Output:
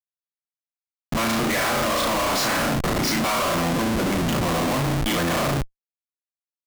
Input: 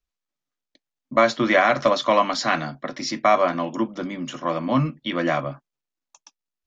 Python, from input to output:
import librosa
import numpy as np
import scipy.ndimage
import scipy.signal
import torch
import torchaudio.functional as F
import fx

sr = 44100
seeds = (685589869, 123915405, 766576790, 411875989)

y = fx.spec_quant(x, sr, step_db=30)
y = fx.room_flutter(y, sr, wall_m=6.1, rt60_s=0.52)
y = fx.schmitt(y, sr, flips_db=-32.0)